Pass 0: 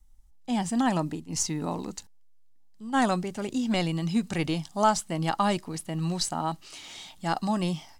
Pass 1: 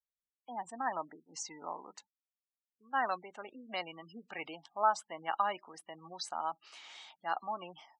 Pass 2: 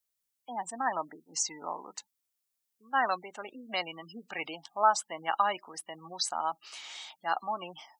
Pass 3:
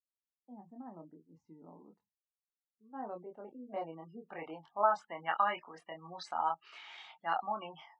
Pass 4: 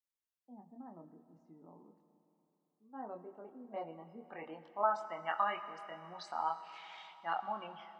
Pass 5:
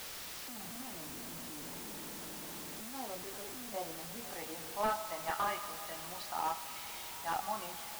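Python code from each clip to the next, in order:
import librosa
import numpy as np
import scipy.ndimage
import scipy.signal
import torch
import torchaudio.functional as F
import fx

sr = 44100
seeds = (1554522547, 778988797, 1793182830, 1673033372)

y1 = fx.lowpass(x, sr, hz=1400.0, slope=6)
y1 = fx.spec_gate(y1, sr, threshold_db=-30, keep='strong')
y1 = scipy.signal.sosfilt(scipy.signal.butter(2, 960.0, 'highpass', fs=sr, output='sos'), y1)
y2 = fx.high_shelf(y1, sr, hz=4500.0, db=10.5)
y2 = y2 * 10.0 ** (4.0 / 20.0)
y3 = fx.chorus_voices(y2, sr, voices=4, hz=0.32, base_ms=24, depth_ms=1.3, mix_pct=40)
y3 = fx.noise_reduce_blind(y3, sr, reduce_db=11)
y3 = fx.filter_sweep_lowpass(y3, sr, from_hz=270.0, to_hz=2200.0, start_s=2.6, end_s=5.33, q=1.0)
y4 = fx.rev_schroeder(y3, sr, rt60_s=3.5, comb_ms=26, drr_db=11.0)
y4 = y4 * 10.0 ** (-3.0 / 20.0)
y5 = fx.delta_mod(y4, sr, bps=32000, step_db=-44.5)
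y5 = fx.quant_dither(y5, sr, seeds[0], bits=8, dither='triangular')
y5 = y5 * 10.0 ** (1.0 / 20.0)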